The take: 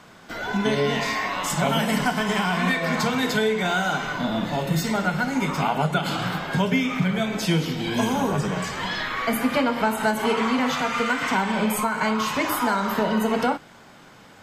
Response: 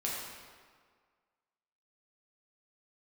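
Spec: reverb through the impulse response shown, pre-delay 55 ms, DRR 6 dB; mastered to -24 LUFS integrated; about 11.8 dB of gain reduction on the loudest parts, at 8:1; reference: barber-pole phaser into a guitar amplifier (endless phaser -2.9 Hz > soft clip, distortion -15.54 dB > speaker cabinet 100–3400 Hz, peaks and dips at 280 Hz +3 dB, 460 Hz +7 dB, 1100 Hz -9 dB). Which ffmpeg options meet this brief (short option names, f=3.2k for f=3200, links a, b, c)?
-filter_complex "[0:a]acompressor=threshold=-30dB:ratio=8,asplit=2[a][b];[1:a]atrim=start_sample=2205,adelay=55[c];[b][c]afir=irnorm=-1:irlink=0,volume=-10.5dB[d];[a][d]amix=inputs=2:normalize=0,asplit=2[e][f];[f]afreqshift=-2.9[g];[e][g]amix=inputs=2:normalize=1,asoftclip=threshold=-30.5dB,highpass=100,equalizer=f=280:t=q:w=4:g=3,equalizer=f=460:t=q:w=4:g=7,equalizer=f=1.1k:t=q:w=4:g=-9,lowpass=f=3.4k:w=0.5412,lowpass=f=3.4k:w=1.3066,volume=13dB"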